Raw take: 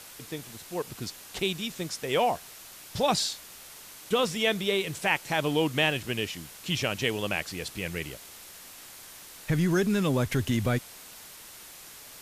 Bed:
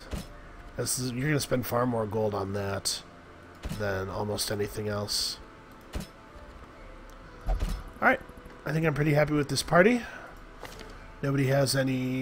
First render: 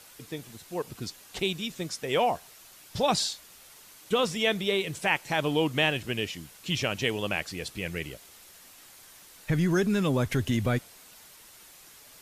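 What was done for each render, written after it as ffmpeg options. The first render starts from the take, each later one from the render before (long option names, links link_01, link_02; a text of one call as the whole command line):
ffmpeg -i in.wav -af "afftdn=noise_reduction=6:noise_floor=-47" out.wav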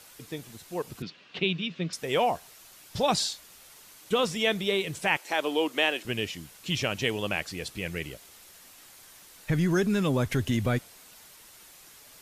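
ffmpeg -i in.wav -filter_complex "[0:a]asettb=1/sr,asplit=3[link_01][link_02][link_03];[link_01]atrim=end=1.024[link_04];[link_02]atrim=start=1.02:end=1.93,asetpts=PTS-STARTPTS,afade=type=in:duration=0.004:curve=qsin,afade=type=out:start_time=0.906:duration=0.004:curve=qsin,highpass=150,equalizer=frequency=170:width_type=q:width=4:gain=9,equalizer=frequency=820:width_type=q:width=4:gain=-6,equalizer=frequency=2700:width_type=q:width=4:gain=6,lowpass=frequency=4100:width=0.5412,lowpass=frequency=4100:width=1.3066[link_05];[link_03]atrim=start=1.926[link_06];[link_04][link_05]acrossfade=duration=0.004:curve1=hsin:curve2=qsin[link_07];[link_07][link_06]acrossfade=duration=0.004:curve1=qsin:curve2=hsin,asettb=1/sr,asplit=3[link_08][link_09][link_10];[link_08]atrim=end=5.174[link_11];[link_09]atrim=start=5.17:end=6.05,asetpts=PTS-STARTPTS,afade=type=in:duration=0.004:curve=qsin,afade=type=out:start_time=0.876:duration=0.004:curve=qsin,highpass=frequency=290:width=0.5412,highpass=frequency=290:width=1.3066[link_12];[link_10]atrim=start=6.046[link_13];[link_11][link_12]acrossfade=duration=0.004:curve1=hsin:curve2=qsin[link_14];[link_14][link_13]acrossfade=duration=0.004:curve1=qsin:curve2=hsin" out.wav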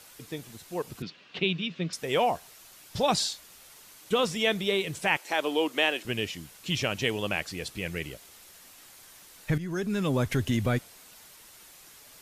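ffmpeg -i in.wav -filter_complex "[0:a]asplit=2[link_01][link_02];[link_01]atrim=end=9.58,asetpts=PTS-STARTPTS,afade=type=out:start_time=9.576:duration=0.004:curve=hsin:silence=0.211349[link_03];[link_02]atrim=start=9.58,asetpts=PTS-STARTPTS,afade=type=in:duration=0.61:silence=0.211349[link_04];[link_03][link_04]concat=n=2:v=0:a=1" out.wav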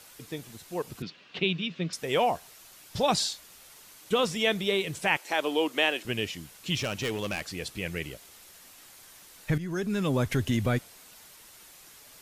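ffmpeg -i in.wav -filter_complex "[0:a]asettb=1/sr,asplit=3[link_01][link_02][link_03];[link_01]atrim=end=6.754[link_04];[link_02]atrim=start=6.75:end=7.46,asetpts=PTS-STARTPTS,afade=type=in:duration=0.004:curve=qsin,afade=type=out:start_time=0.706:duration=0.004:curve=qsin,volume=26dB,asoftclip=hard,volume=-26dB[link_05];[link_03]atrim=start=7.456[link_06];[link_04][link_05]acrossfade=duration=0.004:curve1=hsin:curve2=qsin[link_07];[link_07][link_06]acrossfade=duration=0.004:curve1=qsin:curve2=hsin" out.wav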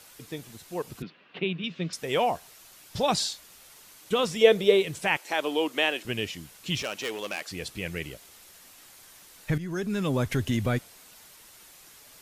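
ffmpeg -i in.wav -filter_complex "[0:a]asettb=1/sr,asplit=3[link_01][link_02][link_03];[link_01]atrim=end=1.034[link_04];[link_02]atrim=start=1.03:end=1.64,asetpts=PTS-STARTPTS,afade=type=in:duration=0.004:curve=qsin,afade=type=out:start_time=0.606:duration=0.004:curve=qsin,highpass=140,lowpass=2400[link_05];[link_03]atrim=start=1.636[link_06];[link_04][link_05]acrossfade=duration=0.004:curve1=hsin:curve2=qsin[link_07];[link_07][link_06]acrossfade=duration=0.004:curve1=qsin:curve2=hsin,asettb=1/sr,asplit=3[link_08][link_09][link_10];[link_08]atrim=end=4.414[link_11];[link_09]atrim=start=4.41:end=4.83,asetpts=PTS-STARTPTS,afade=type=in:duration=0.004:curve=qsin,afade=type=out:start_time=0.416:duration=0.004:curve=qsin,equalizer=frequency=480:width_type=o:width=0.58:gain=14.5[link_12];[link_10]atrim=start=4.826[link_13];[link_11][link_12]acrossfade=duration=0.004:curve1=hsin:curve2=qsin[link_14];[link_14][link_13]acrossfade=duration=0.004:curve1=qsin:curve2=hsin,asettb=1/sr,asplit=3[link_15][link_16][link_17];[link_15]atrim=end=6.824[link_18];[link_16]atrim=start=6.82:end=7.51,asetpts=PTS-STARTPTS,afade=type=in:duration=0.004:curve=qsin,afade=type=out:start_time=0.686:duration=0.004:curve=qsin,highpass=350[link_19];[link_17]atrim=start=7.506[link_20];[link_18][link_19]acrossfade=duration=0.004:curve1=hsin:curve2=qsin[link_21];[link_21][link_20]acrossfade=duration=0.004:curve1=qsin:curve2=hsin" out.wav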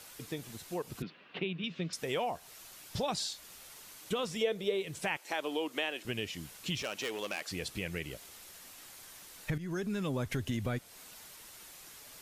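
ffmpeg -i in.wav -af "acompressor=threshold=-35dB:ratio=2.5" out.wav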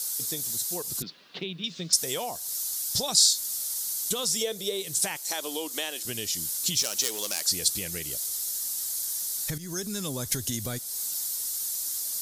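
ffmpeg -i in.wav -af "aexciter=amount=8.3:drive=6.2:freq=3900" out.wav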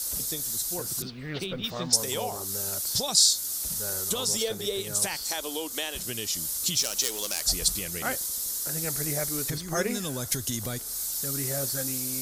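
ffmpeg -i in.wav -i bed.wav -filter_complex "[1:a]volume=-9dB[link_01];[0:a][link_01]amix=inputs=2:normalize=0" out.wav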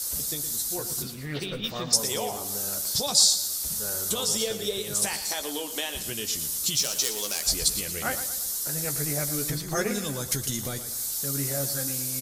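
ffmpeg -i in.wav -filter_complex "[0:a]asplit=2[link_01][link_02];[link_02]adelay=14,volume=-8dB[link_03];[link_01][link_03]amix=inputs=2:normalize=0,asplit=2[link_04][link_05];[link_05]aecho=0:1:116|232|348|464|580:0.266|0.12|0.0539|0.0242|0.0109[link_06];[link_04][link_06]amix=inputs=2:normalize=0" out.wav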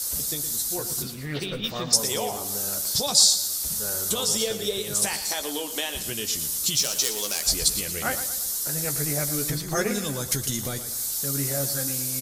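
ffmpeg -i in.wav -af "volume=2dB" out.wav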